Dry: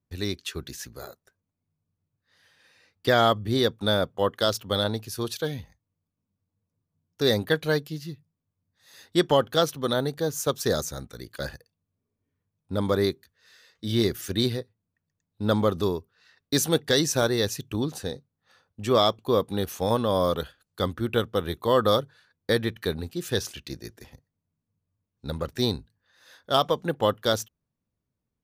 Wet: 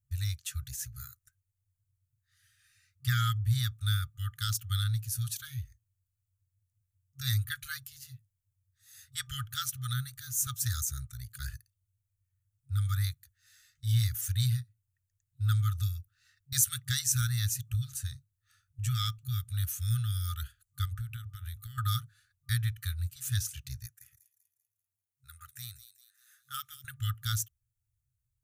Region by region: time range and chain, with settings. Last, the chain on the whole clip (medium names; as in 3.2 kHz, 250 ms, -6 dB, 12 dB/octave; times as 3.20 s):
20.85–21.78 s: hum notches 50/100/150/200/250/300/350 Hz + compression 12:1, threshold -31 dBFS
23.86–26.85 s: high-pass 1.1 kHz 6 dB/octave + peaking EQ 4.3 kHz -10.5 dB 1.3 oct + feedback echo behind a high-pass 195 ms, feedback 44%, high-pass 3.5 kHz, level -10 dB
whole clip: FFT band-reject 130–1200 Hz; high-order bell 2.3 kHz -13 dB 2.7 oct; trim +4 dB